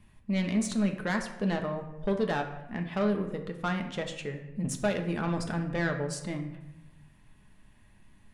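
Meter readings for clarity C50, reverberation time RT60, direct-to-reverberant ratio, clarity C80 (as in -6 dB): 8.5 dB, 0.95 s, 4.0 dB, 11.0 dB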